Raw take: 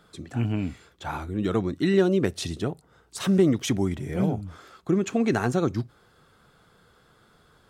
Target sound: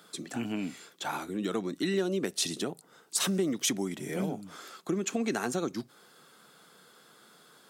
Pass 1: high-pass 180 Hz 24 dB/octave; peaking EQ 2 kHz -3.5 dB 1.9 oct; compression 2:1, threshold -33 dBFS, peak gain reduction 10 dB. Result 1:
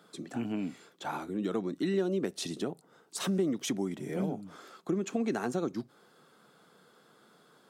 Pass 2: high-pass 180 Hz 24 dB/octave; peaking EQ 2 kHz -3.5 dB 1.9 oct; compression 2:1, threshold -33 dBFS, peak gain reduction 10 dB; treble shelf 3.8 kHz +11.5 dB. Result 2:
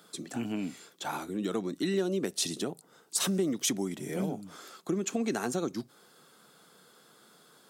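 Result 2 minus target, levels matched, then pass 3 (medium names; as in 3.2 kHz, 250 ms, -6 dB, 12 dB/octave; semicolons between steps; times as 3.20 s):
2 kHz band -2.5 dB
high-pass 180 Hz 24 dB/octave; compression 2:1, threshold -33 dBFS, peak gain reduction 10 dB; treble shelf 3.8 kHz +11.5 dB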